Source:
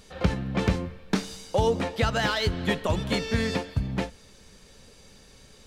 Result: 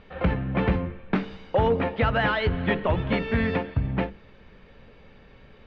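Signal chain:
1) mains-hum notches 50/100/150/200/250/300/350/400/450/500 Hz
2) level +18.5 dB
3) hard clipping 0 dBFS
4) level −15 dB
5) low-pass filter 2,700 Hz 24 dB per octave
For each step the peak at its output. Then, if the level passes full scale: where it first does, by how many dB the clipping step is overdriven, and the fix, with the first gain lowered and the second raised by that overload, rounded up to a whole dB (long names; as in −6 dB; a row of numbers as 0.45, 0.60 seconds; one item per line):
−10.5, +8.0, 0.0, −15.0, −13.5 dBFS
step 2, 8.0 dB
step 2 +10.5 dB, step 4 −7 dB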